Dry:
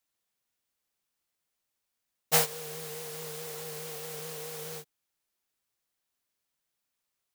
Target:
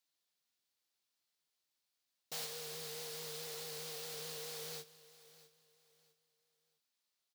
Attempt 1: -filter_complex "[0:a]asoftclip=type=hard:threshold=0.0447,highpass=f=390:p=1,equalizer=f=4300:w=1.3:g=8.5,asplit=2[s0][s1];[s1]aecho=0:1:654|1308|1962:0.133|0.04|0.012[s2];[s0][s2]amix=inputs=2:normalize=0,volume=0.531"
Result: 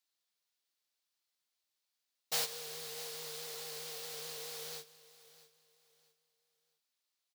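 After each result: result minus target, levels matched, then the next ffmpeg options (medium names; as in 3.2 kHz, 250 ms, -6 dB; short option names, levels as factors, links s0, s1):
125 Hz band -7.0 dB; hard clipper: distortion -6 dB
-filter_complex "[0:a]asoftclip=type=hard:threshold=0.0447,highpass=f=120:p=1,equalizer=f=4300:w=1.3:g=8.5,asplit=2[s0][s1];[s1]aecho=0:1:654|1308|1962:0.133|0.04|0.012[s2];[s0][s2]amix=inputs=2:normalize=0,volume=0.531"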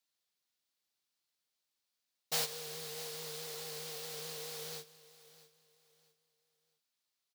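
hard clipper: distortion -6 dB
-filter_complex "[0:a]asoftclip=type=hard:threshold=0.0133,highpass=f=120:p=1,equalizer=f=4300:w=1.3:g=8.5,asplit=2[s0][s1];[s1]aecho=0:1:654|1308|1962:0.133|0.04|0.012[s2];[s0][s2]amix=inputs=2:normalize=0,volume=0.531"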